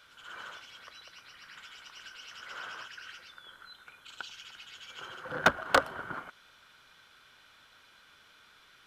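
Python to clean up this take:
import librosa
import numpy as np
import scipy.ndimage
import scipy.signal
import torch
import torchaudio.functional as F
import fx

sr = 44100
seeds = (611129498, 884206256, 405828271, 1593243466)

y = fx.fix_declip(x, sr, threshold_db=-14.0)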